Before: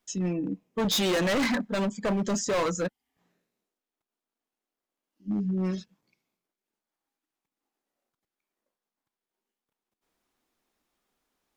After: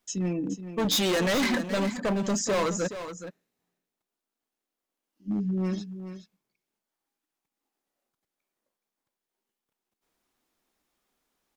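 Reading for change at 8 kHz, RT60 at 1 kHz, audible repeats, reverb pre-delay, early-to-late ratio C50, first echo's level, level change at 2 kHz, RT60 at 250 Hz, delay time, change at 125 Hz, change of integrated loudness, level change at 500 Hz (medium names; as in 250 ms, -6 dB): +2.0 dB, no reverb, 1, no reverb, no reverb, -11.0 dB, +0.5 dB, no reverb, 422 ms, +0.5 dB, +0.5 dB, +0.5 dB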